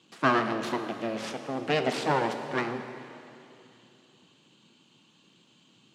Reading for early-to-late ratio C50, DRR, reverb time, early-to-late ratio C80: 8.0 dB, 6.5 dB, 2.8 s, 8.5 dB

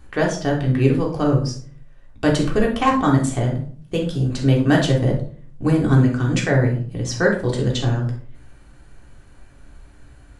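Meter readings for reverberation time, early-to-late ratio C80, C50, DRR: 0.50 s, 11.5 dB, 6.5 dB, -2.5 dB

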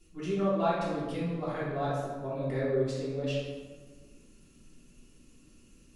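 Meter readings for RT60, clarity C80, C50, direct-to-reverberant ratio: 1.5 s, 2.0 dB, -1.0 dB, -10.5 dB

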